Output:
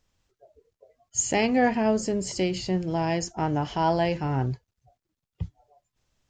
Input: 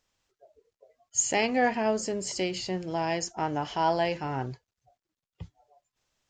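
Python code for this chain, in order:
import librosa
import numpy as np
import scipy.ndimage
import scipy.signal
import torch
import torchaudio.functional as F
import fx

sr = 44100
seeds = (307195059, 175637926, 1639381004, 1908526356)

y = fx.low_shelf(x, sr, hz=260.0, db=12.0)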